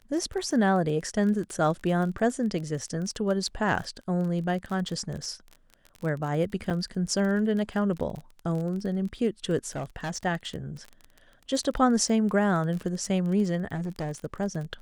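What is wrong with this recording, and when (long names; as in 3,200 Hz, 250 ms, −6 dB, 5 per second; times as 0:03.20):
surface crackle 29 per second −33 dBFS
0:06.70–0:06.71: drop-out 6.3 ms
0:09.75–0:10.26: clipping −28 dBFS
0:13.74–0:14.12: clipping −27.5 dBFS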